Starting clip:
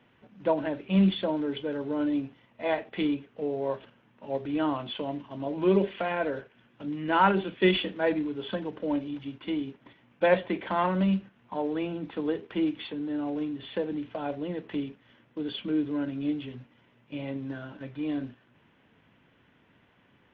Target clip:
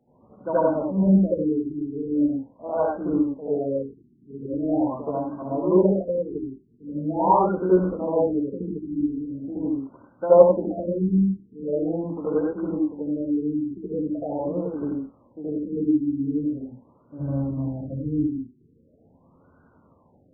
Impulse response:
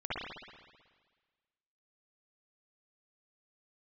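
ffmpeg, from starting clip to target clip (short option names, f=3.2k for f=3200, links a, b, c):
-filter_complex "[1:a]atrim=start_sample=2205,atrim=end_sample=6174,asetrate=32634,aresample=44100[a];[0:a][a]afir=irnorm=-1:irlink=0,asplit=3[b][c][d];[b]afade=t=out:st=17.18:d=0.02[e];[c]asubboost=boost=4.5:cutoff=170,afade=t=in:st=17.18:d=0.02,afade=t=out:st=18.26:d=0.02[f];[d]afade=t=in:st=18.26:d=0.02[g];[e][f][g]amix=inputs=3:normalize=0,afftfilt=real='re*lt(b*sr/1024,410*pow(1600/410,0.5+0.5*sin(2*PI*0.42*pts/sr)))':imag='im*lt(b*sr/1024,410*pow(1600/410,0.5+0.5*sin(2*PI*0.42*pts/sr)))':win_size=1024:overlap=0.75"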